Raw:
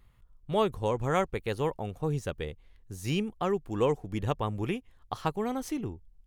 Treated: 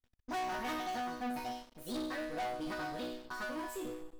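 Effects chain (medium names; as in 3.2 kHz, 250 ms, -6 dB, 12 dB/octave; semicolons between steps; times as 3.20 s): gliding tape speed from 175% -> 124%; chord resonator B3 major, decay 0.67 s; waveshaping leveller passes 5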